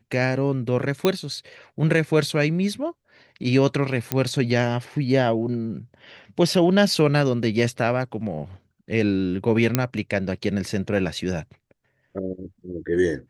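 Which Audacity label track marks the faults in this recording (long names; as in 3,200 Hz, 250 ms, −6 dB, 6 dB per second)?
1.050000	1.050000	click −6 dBFS
4.120000	4.120000	click −6 dBFS
9.750000	9.750000	click −3 dBFS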